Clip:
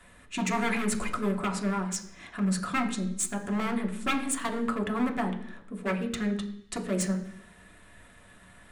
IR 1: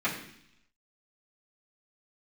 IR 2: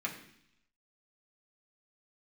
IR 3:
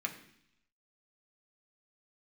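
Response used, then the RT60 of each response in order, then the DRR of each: 3; 0.70 s, 0.70 s, 0.70 s; -11.5 dB, -3.0 dB, 1.0 dB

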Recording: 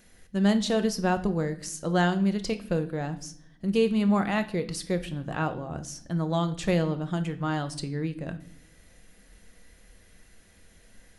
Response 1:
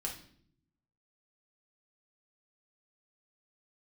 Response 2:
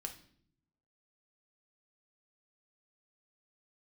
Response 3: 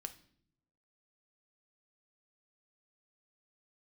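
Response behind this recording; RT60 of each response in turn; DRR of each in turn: 3; no single decay rate, no single decay rate, no single decay rate; -1.0 dB, 4.0 dB, 8.5 dB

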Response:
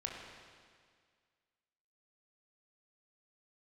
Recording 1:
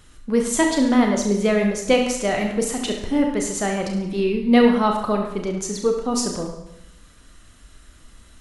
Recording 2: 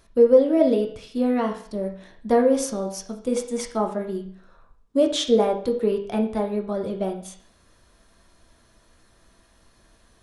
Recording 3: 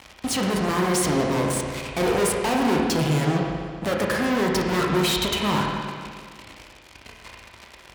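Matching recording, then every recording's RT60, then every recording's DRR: 3; 0.85 s, 0.55 s, 1.9 s; 2.0 dB, 2.0 dB, -1.0 dB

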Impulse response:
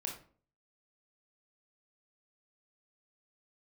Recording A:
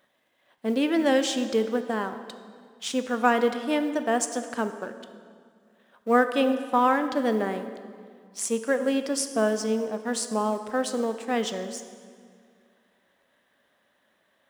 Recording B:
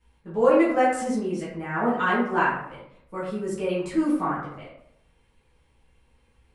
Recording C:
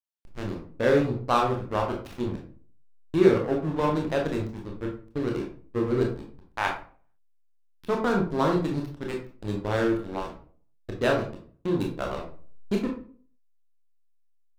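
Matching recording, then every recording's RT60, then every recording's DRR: C; 2.1 s, 0.75 s, 0.45 s; 9.0 dB, -10.5 dB, 0.0 dB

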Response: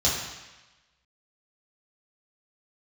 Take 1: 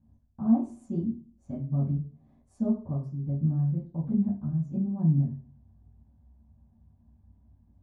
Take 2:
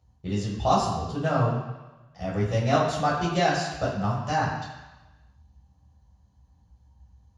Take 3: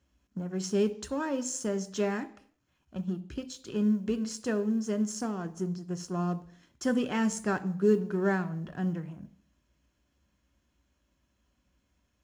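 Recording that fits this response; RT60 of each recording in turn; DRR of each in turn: 2; 0.40 s, 1.1 s, 0.60 s; -11.0 dB, -6.5 dB, 10.0 dB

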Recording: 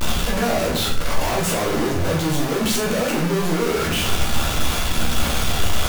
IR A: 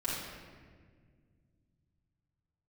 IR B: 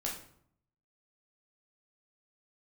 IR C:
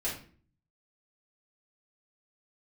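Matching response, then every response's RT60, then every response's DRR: B; 1.7 s, 0.65 s, 0.45 s; -8.5 dB, -3.0 dB, -8.5 dB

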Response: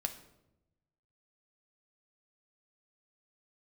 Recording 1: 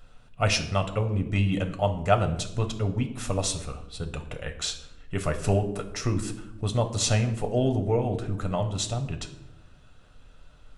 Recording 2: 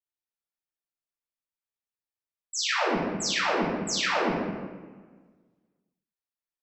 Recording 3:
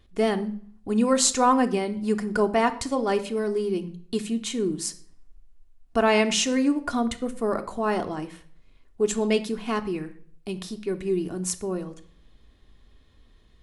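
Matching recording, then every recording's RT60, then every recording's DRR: 1; 0.90 s, 1.4 s, 0.50 s; 5.5 dB, -13.5 dB, 6.5 dB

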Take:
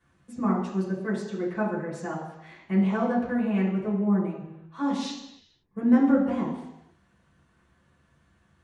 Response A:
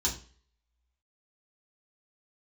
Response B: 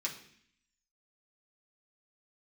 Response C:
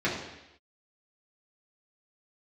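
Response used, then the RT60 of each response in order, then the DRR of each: C; 0.40 s, 0.60 s, 0.90 s; -6.5 dB, -3.5 dB, -8.0 dB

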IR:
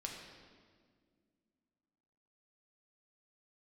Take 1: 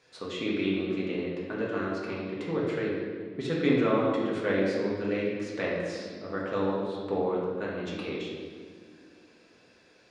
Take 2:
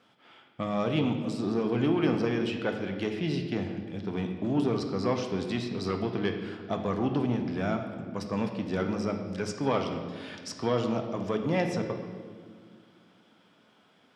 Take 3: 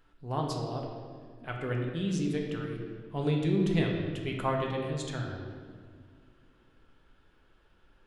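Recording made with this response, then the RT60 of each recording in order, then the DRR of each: 3; 1.9 s, 1.9 s, 1.9 s; -5.5 dB, 4.0 dB, -0.5 dB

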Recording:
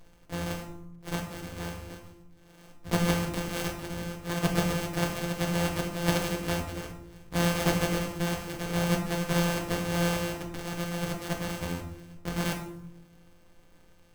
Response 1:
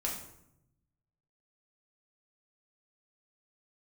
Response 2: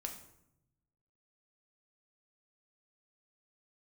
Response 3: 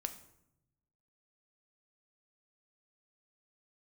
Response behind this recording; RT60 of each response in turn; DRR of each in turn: 2; 0.80 s, 0.80 s, 0.80 s; -3.0 dB, 2.5 dB, 7.5 dB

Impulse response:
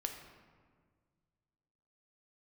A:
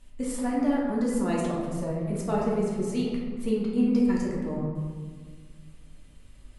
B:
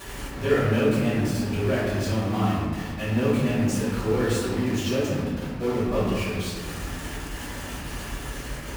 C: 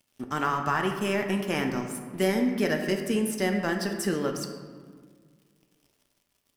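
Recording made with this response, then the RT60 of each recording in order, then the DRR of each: C; 1.7 s, 1.7 s, 1.7 s; -5.5 dB, -12.5 dB, 3.5 dB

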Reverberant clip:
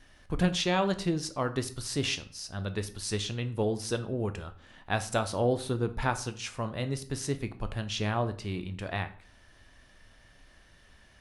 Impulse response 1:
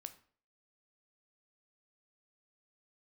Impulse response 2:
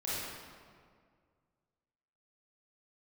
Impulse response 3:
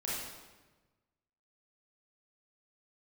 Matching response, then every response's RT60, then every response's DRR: 1; 0.50 s, 2.0 s, 1.2 s; 9.5 dB, -9.5 dB, -7.5 dB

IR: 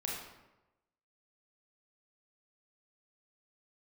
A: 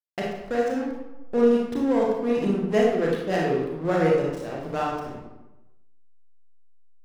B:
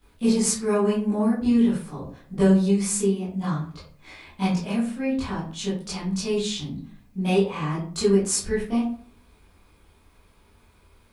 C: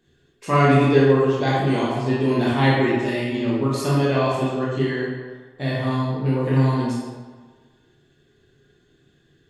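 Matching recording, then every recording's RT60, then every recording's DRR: A; 1.0 s, 0.50 s, 1.4 s; -3.5 dB, -11.5 dB, -7.0 dB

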